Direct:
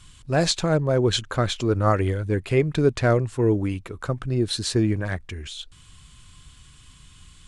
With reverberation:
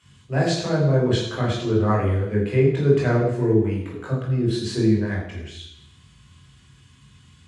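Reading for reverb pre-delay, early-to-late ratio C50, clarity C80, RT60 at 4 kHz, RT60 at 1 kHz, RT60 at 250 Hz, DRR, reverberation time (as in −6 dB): 18 ms, 3.0 dB, 6.0 dB, 0.80 s, 0.85 s, 0.80 s, −4.5 dB, 0.80 s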